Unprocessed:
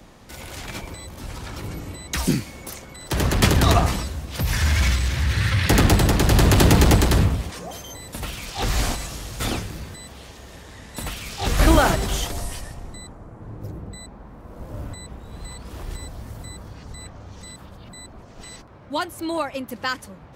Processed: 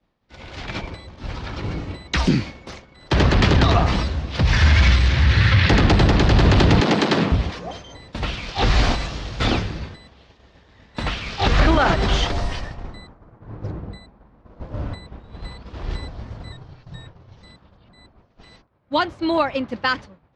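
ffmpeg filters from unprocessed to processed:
ffmpeg -i in.wav -filter_complex "[0:a]asettb=1/sr,asplit=3[link_01][link_02][link_03];[link_01]atrim=end=6.804[link_04];[link_02]atrim=start=6.8:end=7.32,asetpts=PTS-STARTPTS,afade=type=in:duration=0.004:curve=qsin,afade=type=out:start_time=0.516:duration=0.004:curve=qsin,highpass=frequency=180:width=0.5412,highpass=frequency=180:width=1.3066[link_05];[link_03]atrim=start=7.316[link_06];[link_04][link_05]acrossfade=duration=0.004:curve1=hsin:curve2=qsin[link_07];[link_07][link_06]acrossfade=duration=0.004:curve1=qsin:curve2=hsin,asettb=1/sr,asplit=3[link_08][link_09][link_10];[link_08]atrim=end=10.914[link_11];[link_09]atrim=start=10.91:end=13.8,asetpts=PTS-STARTPTS,afade=type=in:duration=0.004:curve=qsin,afade=type=out:start_time=2.886:duration=0.004:curve=qsin,equalizer=frequency=1400:width=0.85:gain=2.5[link_12];[link_10]atrim=start=13.796[link_13];[link_11][link_12]acrossfade=duration=0.004:curve1=hsin:curve2=qsin[link_14];[link_14][link_13]acrossfade=duration=0.004:curve1=qsin:curve2=hsin,asettb=1/sr,asplit=3[link_15][link_16][link_17];[link_15]atrim=end=16.524[link_18];[link_16]atrim=start=16.52:end=17.37,asetpts=PTS-STARTPTS,afade=type=in:duration=0.004:curve=qsin,afade=type=out:start_time=0.846:duration=0.004:curve=qsin,afreqshift=-190[link_19];[link_17]atrim=start=17.366[link_20];[link_18][link_19]acrossfade=duration=0.004:curve1=hsin:curve2=qsin[link_21];[link_21][link_20]acrossfade=duration=0.004:curve1=qsin:curve2=hsin,agate=range=-33dB:threshold=-30dB:ratio=3:detection=peak,lowpass=frequency=4800:width=0.5412,lowpass=frequency=4800:width=1.3066,alimiter=limit=-12.5dB:level=0:latency=1:release=109,volume=6dB" out.wav

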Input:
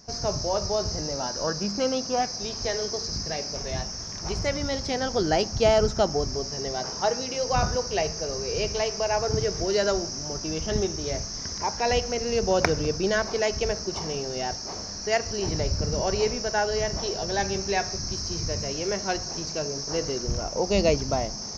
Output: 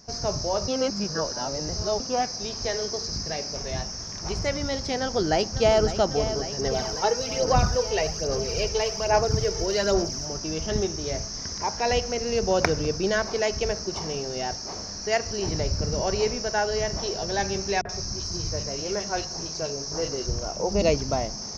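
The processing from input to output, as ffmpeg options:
ffmpeg -i in.wav -filter_complex "[0:a]asplit=2[link_01][link_02];[link_02]afade=type=in:start_time=4.98:duration=0.01,afade=type=out:start_time=5.85:duration=0.01,aecho=0:1:550|1100|1650|2200|2750|3300|3850|4400|4950|5500|6050|6600:0.281838|0.211379|0.158534|0.118901|0.0891754|0.0668815|0.0501612|0.0376209|0.0282157|0.0211617|0.0158713|0.0119035[link_03];[link_01][link_03]amix=inputs=2:normalize=0,asplit=3[link_04][link_05][link_06];[link_04]afade=type=out:start_time=6.58:duration=0.02[link_07];[link_05]aphaser=in_gain=1:out_gain=1:delay=2.3:decay=0.46:speed=1.2:type=sinusoidal,afade=type=in:start_time=6.58:duration=0.02,afade=type=out:start_time=10.25:duration=0.02[link_08];[link_06]afade=type=in:start_time=10.25:duration=0.02[link_09];[link_07][link_08][link_09]amix=inputs=3:normalize=0,asettb=1/sr,asplit=3[link_10][link_11][link_12];[link_10]atrim=end=17.814[link_13];[link_11]atrim=start=17.81:end=20.82,asetpts=PTS-STARTPTS,afade=type=in:duration=0.004:curve=qsin,afade=type=out:start_time=3.006:duration=0.004:curve=qsin,acrossover=split=240|2200[link_14][link_15][link_16];[link_15]adelay=40[link_17];[link_16]adelay=80[link_18];[link_14][link_17][link_18]amix=inputs=3:normalize=0,atrim=end_sample=132741[link_19];[link_12]atrim=start=20.816[link_20];[link_13][link_19]acrossfade=duration=0.004:curve1=hsin:curve2=qsin[link_21];[link_21][link_20]acrossfade=duration=0.004:curve1=qsin:curve2=hsin,asplit=3[link_22][link_23][link_24];[link_22]atrim=end=0.682[link_25];[link_23]atrim=start=0.678:end=2.002,asetpts=PTS-STARTPTS,areverse[link_26];[link_24]atrim=start=1.998[link_27];[link_25][link_26]acrossfade=duration=0.004:curve1=hsin:curve2=hsin[link_28];[link_28][link_27]acrossfade=duration=0.004:curve1=hsin:curve2=hsin" out.wav

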